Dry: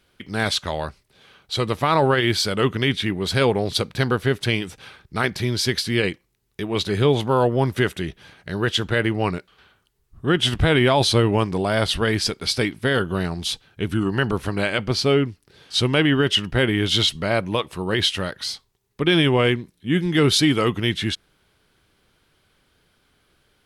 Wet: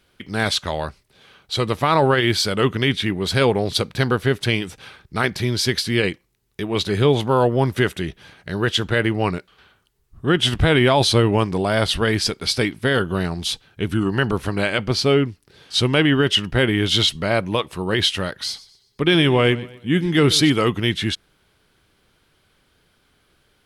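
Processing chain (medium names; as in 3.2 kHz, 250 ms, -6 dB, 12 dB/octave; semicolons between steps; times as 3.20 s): 18.43–20.50 s: modulated delay 124 ms, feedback 38%, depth 54 cents, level -18.5 dB; trim +1.5 dB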